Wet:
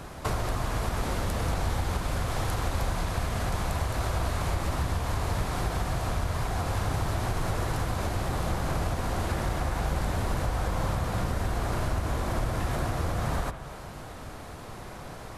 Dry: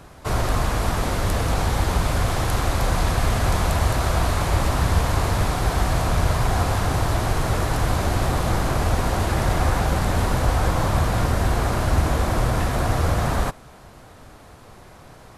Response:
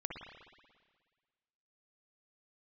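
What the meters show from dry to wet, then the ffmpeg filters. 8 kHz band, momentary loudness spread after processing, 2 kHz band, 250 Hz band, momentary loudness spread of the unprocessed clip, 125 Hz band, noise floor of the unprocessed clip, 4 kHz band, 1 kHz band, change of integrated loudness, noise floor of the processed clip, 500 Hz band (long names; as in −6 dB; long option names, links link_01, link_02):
−8.5 dB, 7 LU, −8.0 dB, −7.5 dB, 2 LU, −8.0 dB, −46 dBFS, −8.0 dB, −8.0 dB, −8.0 dB, −42 dBFS, −8.0 dB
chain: -filter_complex "[0:a]acompressor=threshold=-30dB:ratio=6,asplit=2[link_01][link_02];[1:a]atrim=start_sample=2205[link_03];[link_02][link_03]afir=irnorm=-1:irlink=0,volume=-3.5dB[link_04];[link_01][link_04]amix=inputs=2:normalize=0"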